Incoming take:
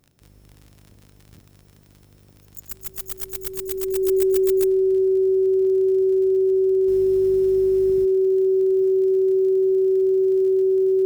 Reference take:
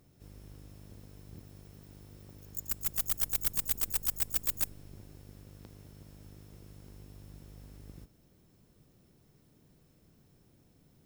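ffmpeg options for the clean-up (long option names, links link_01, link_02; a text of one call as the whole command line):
ffmpeg -i in.wav -af "adeclick=threshold=4,bandreject=frequency=380:width=30,asetnsamples=nb_out_samples=441:pad=0,asendcmd='6.88 volume volume -10.5dB',volume=0dB" out.wav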